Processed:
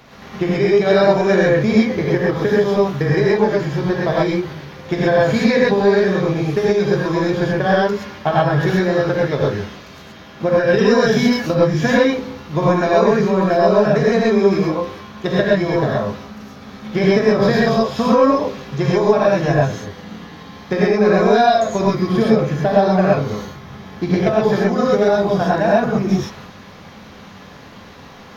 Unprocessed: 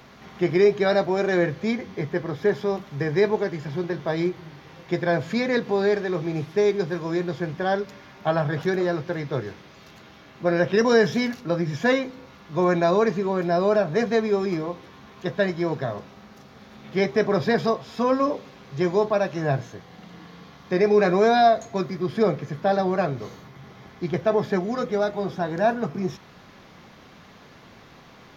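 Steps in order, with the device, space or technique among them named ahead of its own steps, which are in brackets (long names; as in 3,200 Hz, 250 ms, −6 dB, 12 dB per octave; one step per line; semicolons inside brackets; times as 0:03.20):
drum-bus smash (transient designer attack +9 dB, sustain +5 dB; downward compressor, threshold −16 dBFS, peak gain reduction 8.5 dB; soft clipping −7 dBFS, distortion −26 dB)
reverb whose tail is shaped and stops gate 150 ms rising, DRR −5 dB
level +1.5 dB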